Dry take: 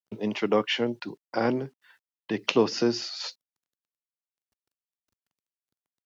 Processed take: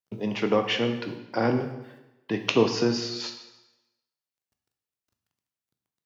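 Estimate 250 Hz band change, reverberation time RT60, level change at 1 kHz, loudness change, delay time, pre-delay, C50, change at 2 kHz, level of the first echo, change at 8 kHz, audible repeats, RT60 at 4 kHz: +1.5 dB, 1.0 s, +1.0 dB, +1.0 dB, no echo audible, 7 ms, 8.0 dB, +1.5 dB, no echo audible, can't be measured, no echo audible, 0.95 s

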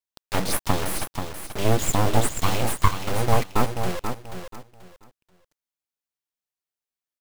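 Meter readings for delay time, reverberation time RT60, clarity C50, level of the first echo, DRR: 484 ms, no reverb audible, no reverb audible, −7.5 dB, no reverb audible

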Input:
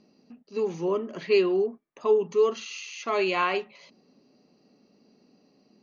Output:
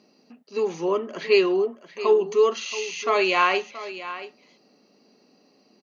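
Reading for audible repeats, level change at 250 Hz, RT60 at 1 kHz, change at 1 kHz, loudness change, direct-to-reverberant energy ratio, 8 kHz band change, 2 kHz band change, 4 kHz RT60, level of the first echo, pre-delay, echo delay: 1, +2.0 dB, no reverb audible, +6.0 dB, +3.5 dB, no reverb audible, can't be measured, +6.5 dB, no reverb audible, −14.0 dB, no reverb audible, 677 ms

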